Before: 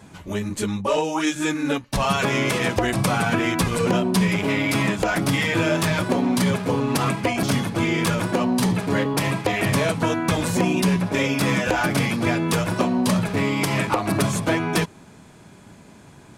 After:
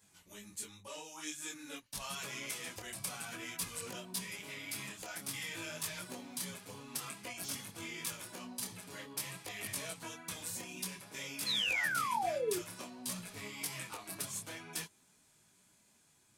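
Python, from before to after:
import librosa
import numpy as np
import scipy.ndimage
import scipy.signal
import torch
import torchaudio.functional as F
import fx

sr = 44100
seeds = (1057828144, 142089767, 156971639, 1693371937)

y = scipy.signal.lfilter([1.0, -0.9], [1.0], x)
y = fx.spec_paint(y, sr, seeds[0], shape='fall', start_s=11.46, length_s=1.13, low_hz=340.0, high_hz=4300.0, level_db=-25.0)
y = fx.detune_double(y, sr, cents=18)
y = F.gain(torch.from_numpy(y), -5.5).numpy()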